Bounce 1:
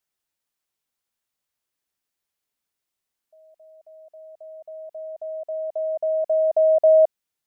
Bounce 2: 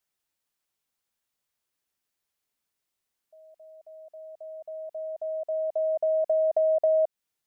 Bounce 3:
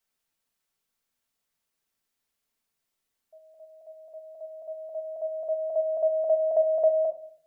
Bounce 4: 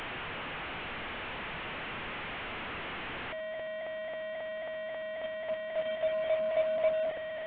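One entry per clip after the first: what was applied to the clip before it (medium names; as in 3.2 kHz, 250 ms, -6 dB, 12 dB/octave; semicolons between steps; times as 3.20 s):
compression 4:1, threshold -22 dBFS, peak gain reduction 8.5 dB
simulated room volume 640 m³, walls furnished, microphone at 1.6 m
one-bit delta coder 16 kbps, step -25.5 dBFS; trim -6.5 dB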